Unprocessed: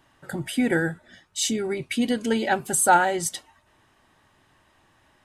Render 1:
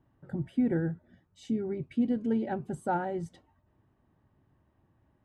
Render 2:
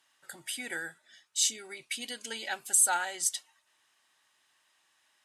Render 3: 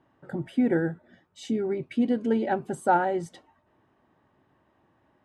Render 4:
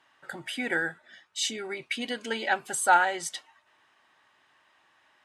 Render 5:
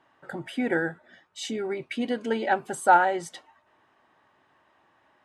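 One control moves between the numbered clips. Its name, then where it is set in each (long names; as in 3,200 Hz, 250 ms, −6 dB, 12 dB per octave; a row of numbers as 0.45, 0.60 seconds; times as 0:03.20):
resonant band-pass, frequency: 100, 7,500, 300, 2,100, 820 Hertz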